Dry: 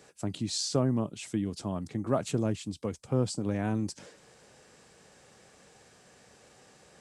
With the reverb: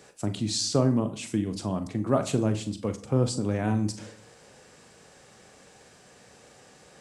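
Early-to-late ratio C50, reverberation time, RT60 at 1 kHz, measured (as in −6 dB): 14.5 dB, 0.55 s, 0.55 s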